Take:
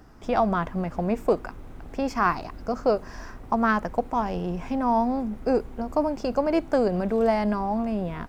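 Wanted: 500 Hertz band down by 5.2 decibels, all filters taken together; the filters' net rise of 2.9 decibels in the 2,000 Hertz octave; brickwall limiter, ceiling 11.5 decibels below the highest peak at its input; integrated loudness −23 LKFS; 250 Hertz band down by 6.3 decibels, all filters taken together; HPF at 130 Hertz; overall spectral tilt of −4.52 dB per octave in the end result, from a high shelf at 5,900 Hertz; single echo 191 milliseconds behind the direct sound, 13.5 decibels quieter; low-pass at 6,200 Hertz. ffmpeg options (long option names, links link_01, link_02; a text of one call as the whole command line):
ffmpeg -i in.wav -af "highpass=130,lowpass=6200,equalizer=frequency=250:width_type=o:gain=-6,equalizer=frequency=500:width_type=o:gain=-5.5,equalizer=frequency=2000:width_type=o:gain=4,highshelf=frequency=5900:gain=6.5,alimiter=limit=-20.5dB:level=0:latency=1,aecho=1:1:191:0.211,volume=8.5dB" out.wav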